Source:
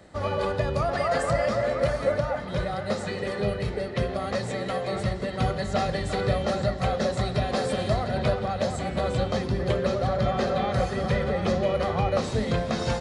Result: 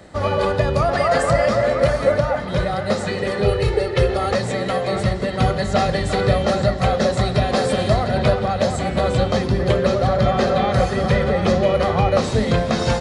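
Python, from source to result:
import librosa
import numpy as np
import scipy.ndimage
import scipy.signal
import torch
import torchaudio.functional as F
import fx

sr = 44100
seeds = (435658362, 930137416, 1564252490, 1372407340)

y = fx.comb(x, sr, ms=2.3, depth=0.86, at=(3.45, 4.34))
y = y * 10.0 ** (7.5 / 20.0)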